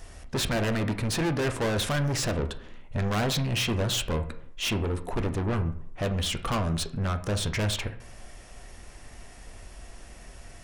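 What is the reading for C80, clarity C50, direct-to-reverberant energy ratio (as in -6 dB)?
16.5 dB, 13.0 dB, 7.0 dB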